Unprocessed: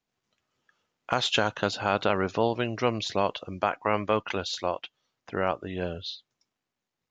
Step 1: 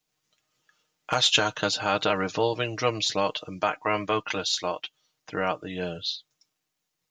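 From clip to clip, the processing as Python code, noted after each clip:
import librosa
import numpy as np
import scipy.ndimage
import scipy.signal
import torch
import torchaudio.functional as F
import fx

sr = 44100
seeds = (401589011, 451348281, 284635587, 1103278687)

y = fx.high_shelf(x, sr, hz=3500.0, db=12.0)
y = y + 0.67 * np.pad(y, (int(6.5 * sr / 1000.0), 0))[:len(y)]
y = y * 10.0 ** (-2.0 / 20.0)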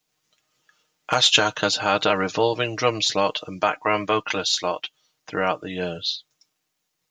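y = fx.low_shelf(x, sr, hz=130.0, db=-4.5)
y = y * 10.0 ** (4.5 / 20.0)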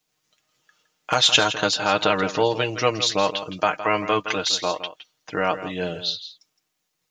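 y = x + 10.0 ** (-12.5 / 20.0) * np.pad(x, (int(164 * sr / 1000.0), 0))[:len(x)]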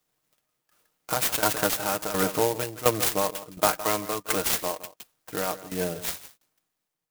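y = fx.tremolo_shape(x, sr, shape='saw_down', hz=1.4, depth_pct=80)
y = fx.clock_jitter(y, sr, seeds[0], jitter_ms=0.093)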